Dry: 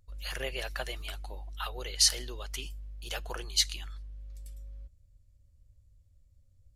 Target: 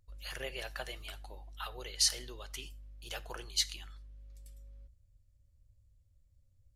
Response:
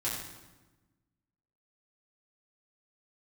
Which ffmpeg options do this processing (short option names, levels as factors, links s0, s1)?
-filter_complex "[0:a]asplit=2[s0][s1];[1:a]atrim=start_sample=2205,atrim=end_sample=4410[s2];[s1][s2]afir=irnorm=-1:irlink=0,volume=0.119[s3];[s0][s3]amix=inputs=2:normalize=0,volume=0.531"